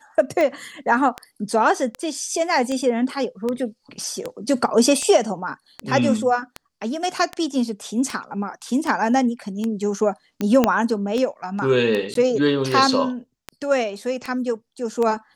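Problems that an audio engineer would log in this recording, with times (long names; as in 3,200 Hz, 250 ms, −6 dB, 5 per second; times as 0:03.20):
scratch tick 78 rpm −12 dBFS
0:10.64: click −3 dBFS
0:12.14–0:12.15: drop-out 13 ms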